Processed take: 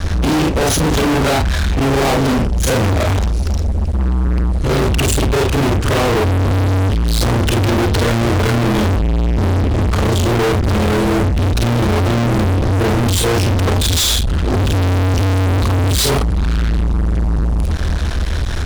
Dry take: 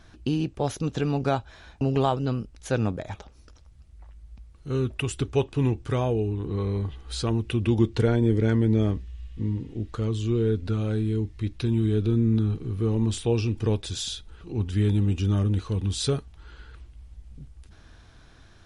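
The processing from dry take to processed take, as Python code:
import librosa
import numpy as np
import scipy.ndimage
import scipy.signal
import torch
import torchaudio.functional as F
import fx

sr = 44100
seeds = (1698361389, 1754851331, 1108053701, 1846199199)

y = fx.frame_reverse(x, sr, frame_ms=103.0)
y = fx.low_shelf_res(y, sr, hz=100.0, db=7.5, q=3.0)
y = fx.fuzz(y, sr, gain_db=49.0, gate_db=-55.0)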